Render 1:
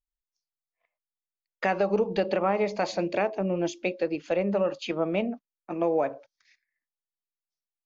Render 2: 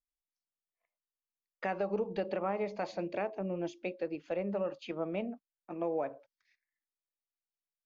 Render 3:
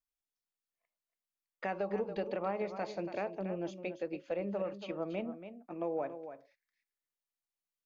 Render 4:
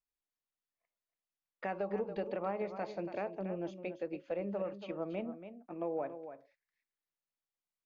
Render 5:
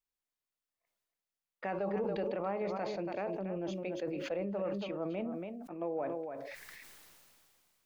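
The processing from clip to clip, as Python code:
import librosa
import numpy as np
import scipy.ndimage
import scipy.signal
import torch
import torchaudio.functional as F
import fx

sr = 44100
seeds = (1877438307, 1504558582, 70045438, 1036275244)

y1 = fx.lowpass(x, sr, hz=2900.0, slope=6)
y1 = y1 * 10.0 ** (-8.5 / 20.0)
y2 = y1 + 10.0 ** (-10.5 / 20.0) * np.pad(y1, (int(282 * sr / 1000.0), 0))[:len(y1)]
y2 = y2 * 10.0 ** (-2.0 / 20.0)
y3 = fx.high_shelf(y2, sr, hz=4900.0, db=-11.0)
y3 = y3 * 10.0 ** (-1.0 / 20.0)
y4 = fx.sustainer(y3, sr, db_per_s=23.0)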